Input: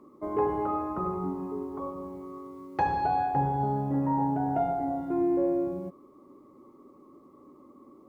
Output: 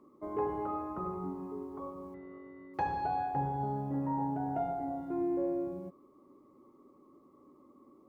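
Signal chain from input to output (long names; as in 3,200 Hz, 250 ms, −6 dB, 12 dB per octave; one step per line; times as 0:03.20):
0:02.14–0:02.74: switching amplifier with a slow clock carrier 2,000 Hz
level −6.5 dB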